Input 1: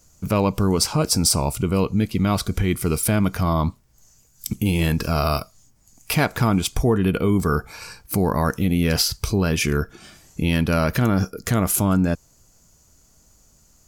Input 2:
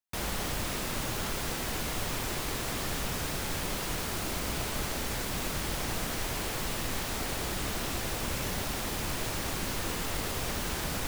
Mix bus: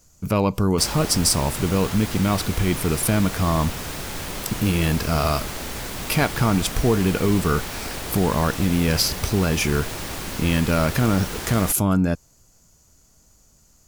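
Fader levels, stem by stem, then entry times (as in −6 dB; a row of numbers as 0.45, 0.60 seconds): −0.5, +2.5 decibels; 0.00, 0.65 seconds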